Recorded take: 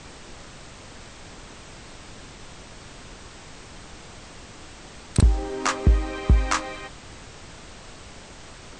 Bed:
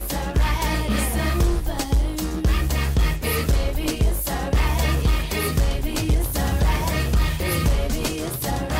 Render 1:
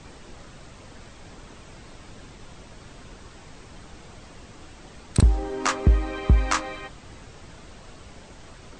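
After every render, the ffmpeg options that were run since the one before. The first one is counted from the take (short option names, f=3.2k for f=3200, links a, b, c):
-af "afftdn=nr=6:nf=-44"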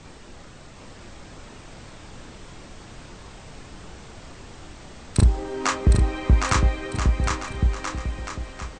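-filter_complex "[0:a]asplit=2[a][b];[b]adelay=31,volume=-9dB[c];[a][c]amix=inputs=2:normalize=0,asplit=2[d][e];[e]aecho=0:1:760|1330|1758|2078|2319:0.631|0.398|0.251|0.158|0.1[f];[d][f]amix=inputs=2:normalize=0"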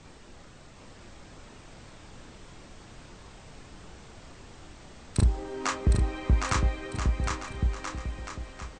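-af "volume=-6dB"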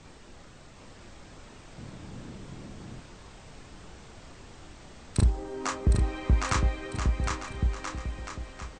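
-filter_complex "[0:a]asettb=1/sr,asplit=3[a][b][c];[a]atrim=end=1.784[d];[b]atrim=start=1.78:end=3,asetpts=PTS-STARTPTS,afade=t=in:d=0.004:c=qsin,afade=t=out:st=1.216:d=0.004:c=qsin,equalizer=f=170:w=0.56:g=10.5[e];[c]atrim=start=2.996[f];[d][e]acrossfade=d=0.004:c1=hsin:c2=qsin[g];[g][f]acrossfade=d=0.004:c1=qsin:c2=hsin,asettb=1/sr,asplit=3[h][i][j];[h]atrim=end=5.304[k];[i]atrim=start=5.3:end=5.96,asetpts=PTS-STARTPTS,afade=t=in:d=0.004:c=qsin,afade=t=out:st=0.656:d=0.004:c=qsin,equalizer=f=2.6k:t=o:w=2.2:g=-4[l];[j]atrim=start=5.956[m];[k][l]acrossfade=d=0.004:c1=hsin:c2=qsin[n];[n][m]acrossfade=d=0.004:c1=qsin:c2=hsin"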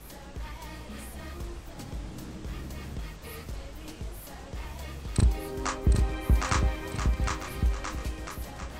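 -filter_complex "[1:a]volume=-19.5dB[a];[0:a][a]amix=inputs=2:normalize=0"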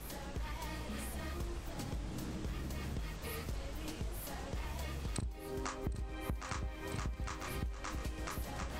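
-af "acompressor=threshold=-36dB:ratio=16"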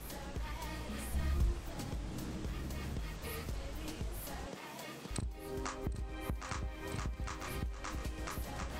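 -filter_complex "[0:a]asplit=3[a][b][c];[a]afade=t=out:st=1.11:d=0.02[d];[b]asubboost=boost=6:cutoff=200,afade=t=in:st=1.11:d=0.02,afade=t=out:st=1.51:d=0.02[e];[c]afade=t=in:st=1.51:d=0.02[f];[d][e][f]amix=inputs=3:normalize=0,asettb=1/sr,asplit=3[g][h][i];[g]atrim=end=4.474[j];[h]atrim=start=4.47:end=5.11,asetpts=PTS-STARTPTS,afade=t=in:d=0.004:c=qsin,afade=t=out:st=0.636:d=0.004:c=qsin,highpass=f=170:w=0.5412,highpass=f=170:w=1.3066[k];[i]atrim=start=5.106[l];[j][k]acrossfade=d=0.004:c1=hsin:c2=qsin[m];[m][l]acrossfade=d=0.004:c1=qsin:c2=hsin"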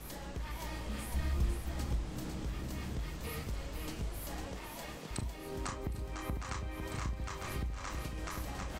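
-filter_complex "[0:a]asplit=2[a][b];[b]adelay=32,volume=-13dB[c];[a][c]amix=inputs=2:normalize=0,asplit=2[d][e];[e]aecho=0:1:502:0.501[f];[d][f]amix=inputs=2:normalize=0"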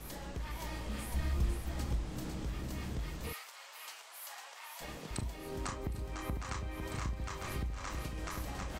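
-filter_complex "[0:a]asplit=3[a][b][c];[a]afade=t=out:st=3.32:d=0.02[d];[b]highpass=f=810:w=0.5412,highpass=f=810:w=1.3066,afade=t=in:st=3.32:d=0.02,afade=t=out:st=4.8:d=0.02[e];[c]afade=t=in:st=4.8:d=0.02[f];[d][e][f]amix=inputs=3:normalize=0"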